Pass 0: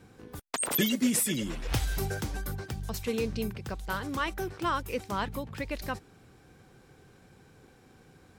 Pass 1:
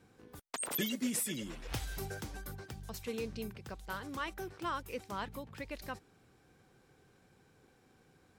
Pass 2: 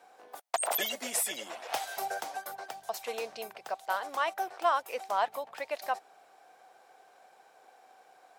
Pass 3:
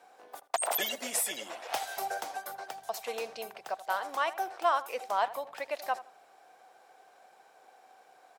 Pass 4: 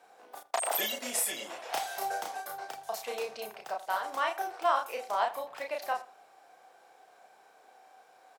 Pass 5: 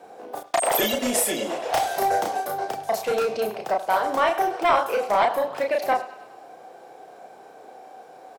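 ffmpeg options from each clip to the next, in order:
ffmpeg -i in.wav -af "lowshelf=frequency=180:gain=-4,volume=-7.5dB" out.wav
ffmpeg -i in.wav -af "highpass=frequency=700:width_type=q:width=5.3,volume=5dB" out.wav
ffmpeg -i in.wav -filter_complex "[0:a]asplit=2[link_01][link_02];[link_02]adelay=80,lowpass=frequency=2100:poles=1,volume=-15dB,asplit=2[link_03][link_04];[link_04]adelay=80,lowpass=frequency=2100:poles=1,volume=0.26,asplit=2[link_05][link_06];[link_06]adelay=80,lowpass=frequency=2100:poles=1,volume=0.26[link_07];[link_01][link_03][link_05][link_07]amix=inputs=4:normalize=0" out.wav
ffmpeg -i in.wav -filter_complex "[0:a]asplit=2[link_01][link_02];[link_02]adelay=33,volume=-3dB[link_03];[link_01][link_03]amix=inputs=2:normalize=0,volume=-1.5dB" out.wav
ffmpeg -i in.wav -filter_complex "[0:a]acrossover=split=610|6900[link_01][link_02][link_03];[link_01]aeval=exprs='0.0447*sin(PI/2*3.16*val(0)/0.0447)':channel_layout=same[link_04];[link_02]aecho=1:1:102|204|306|408|510|612:0.224|0.13|0.0753|0.0437|0.0253|0.0147[link_05];[link_04][link_05][link_03]amix=inputs=3:normalize=0,volume=6.5dB" out.wav

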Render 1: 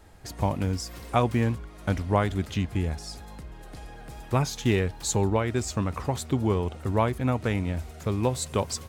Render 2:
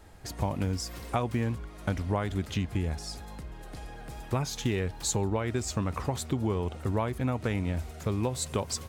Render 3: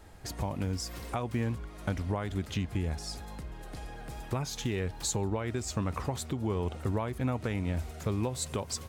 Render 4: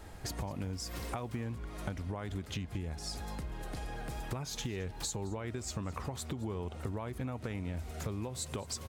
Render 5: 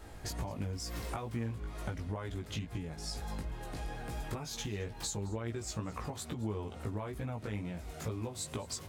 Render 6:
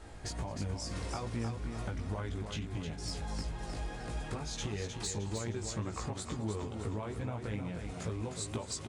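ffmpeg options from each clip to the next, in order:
ffmpeg -i in.wav -af "acompressor=threshold=-25dB:ratio=6" out.wav
ffmpeg -i in.wav -af "alimiter=limit=-21.5dB:level=0:latency=1:release=377" out.wav
ffmpeg -i in.wav -af "acompressor=threshold=-39dB:ratio=6,aecho=1:1:217:0.0891,volume=3.5dB" out.wav
ffmpeg -i in.wav -af "flanger=delay=17:depth=2.6:speed=2.2,volume=2.5dB" out.wav
ffmpeg -i in.wav -af "aresample=22050,aresample=44100,asoftclip=type=hard:threshold=-29.5dB,aecho=1:1:309|618|927|1236|1545|1854:0.473|0.227|0.109|0.0523|0.0251|0.0121" out.wav

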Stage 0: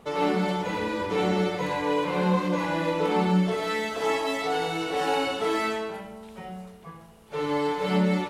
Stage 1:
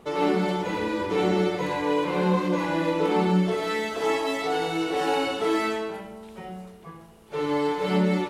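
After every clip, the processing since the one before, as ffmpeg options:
ffmpeg -i in.wav -af "equalizer=frequency=350:width=4.2:gain=7" out.wav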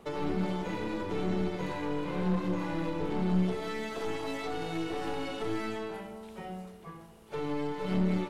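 ffmpeg -i in.wav -filter_complex "[0:a]aeval=exprs='(tanh(10*val(0)+0.6)-tanh(0.6))/10':channel_layout=same,acrossover=split=270[link_01][link_02];[link_02]acompressor=threshold=-35dB:ratio=6[link_03];[link_01][link_03]amix=inputs=2:normalize=0" out.wav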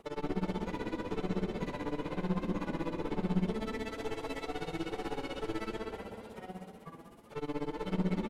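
ffmpeg -i in.wav -filter_complex "[0:a]tremolo=f=16:d=0.95,asplit=8[link_01][link_02][link_03][link_04][link_05][link_06][link_07][link_08];[link_02]adelay=198,afreqshift=34,volume=-10dB[link_09];[link_03]adelay=396,afreqshift=68,volume=-14.9dB[link_10];[link_04]adelay=594,afreqshift=102,volume=-19.8dB[link_11];[link_05]adelay=792,afreqshift=136,volume=-24.6dB[link_12];[link_06]adelay=990,afreqshift=170,volume=-29.5dB[link_13];[link_07]adelay=1188,afreqshift=204,volume=-34.4dB[link_14];[link_08]adelay=1386,afreqshift=238,volume=-39.3dB[link_15];[link_01][link_09][link_10][link_11][link_12][link_13][link_14][link_15]amix=inputs=8:normalize=0" out.wav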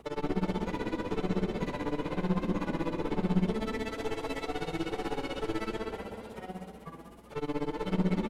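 ffmpeg -i in.wav -af "aeval=exprs='val(0)+0.000794*(sin(2*PI*60*n/s)+sin(2*PI*2*60*n/s)/2+sin(2*PI*3*60*n/s)/3+sin(2*PI*4*60*n/s)/4+sin(2*PI*5*60*n/s)/5)':channel_layout=same,volume=3.5dB" out.wav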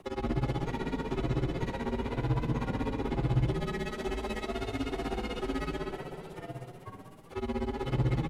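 ffmpeg -i in.wav -af "afreqshift=-57" out.wav

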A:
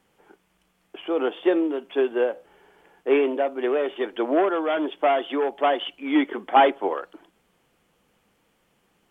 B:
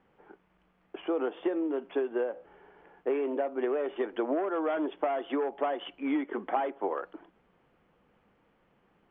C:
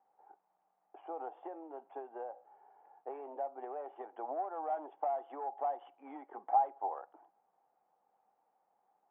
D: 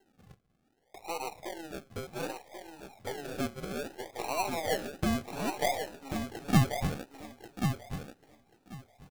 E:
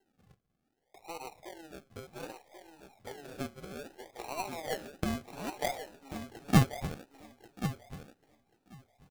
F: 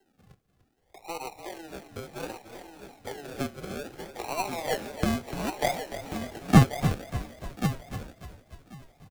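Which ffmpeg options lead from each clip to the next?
ffmpeg -i in.wav -af "lowpass=1900,acompressor=threshold=-26dB:ratio=16" out.wav
ffmpeg -i in.wav -af "bandpass=frequency=790:width_type=q:width=8.5:csg=0,volume=4dB" out.wav
ffmpeg -i in.wav -filter_complex "[0:a]aeval=exprs='if(lt(val(0),0),0.708*val(0),val(0))':channel_layout=same,acrusher=samples=37:mix=1:aa=0.000001:lfo=1:lforange=22.2:lforate=0.63,asplit=2[link_01][link_02];[link_02]aecho=0:1:1087|2174|3261:0.473|0.0757|0.0121[link_03];[link_01][link_03]amix=inputs=2:normalize=0,volume=6.5dB" out.wav
ffmpeg -i in.wav -af "aeval=exprs='0.251*(cos(1*acos(clip(val(0)/0.251,-1,1)))-cos(1*PI/2))+0.0316*(cos(3*acos(clip(val(0)/0.251,-1,1)))-cos(3*PI/2))+0.00355*(cos(5*acos(clip(val(0)/0.251,-1,1)))-cos(5*PI/2))+0.0126*(cos(7*acos(clip(val(0)/0.251,-1,1)))-cos(7*PI/2))+0.01*(cos(8*acos(clip(val(0)/0.251,-1,1)))-cos(8*PI/2))':channel_layout=same,volume=2.5dB" out.wav
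ffmpeg -i in.wav -filter_complex "[0:a]acrossover=split=250|1200[link_01][link_02][link_03];[link_03]asoftclip=type=hard:threshold=-27dB[link_04];[link_01][link_02][link_04]amix=inputs=3:normalize=0,asplit=7[link_05][link_06][link_07][link_08][link_09][link_10][link_11];[link_06]adelay=295,afreqshift=-39,volume=-11.5dB[link_12];[link_07]adelay=590,afreqshift=-78,volume=-16.9dB[link_13];[link_08]adelay=885,afreqshift=-117,volume=-22.2dB[link_14];[link_09]adelay=1180,afreqshift=-156,volume=-27.6dB[link_15];[link_10]adelay=1475,afreqshift=-195,volume=-32.9dB[link_16];[link_11]adelay=1770,afreqshift=-234,volume=-38.3dB[link_17];[link_05][link_12][link_13][link_14][link_15][link_16][link_17]amix=inputs=7:normalize=0,volume=6.5dB" out.wav

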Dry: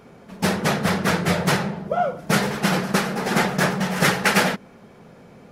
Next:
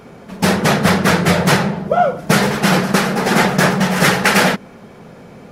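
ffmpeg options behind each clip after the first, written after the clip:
ffmpeg -i in.wav -af "alimiter=level_in=9dB:limit=-1dB:release=50:level=0:latency=1,volume=-1dB" out.wav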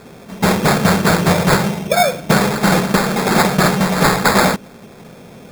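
ffmpeg -i in.wav -af "acrusher=samples=15:mix=1:aa=0.000001" out.wav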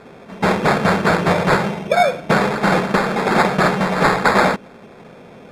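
ffmpeg -i in.wav -af "lowpass=11000,bass=frequency=250:gain=-6,treble=frequency=4000:gain=-12" out.wav

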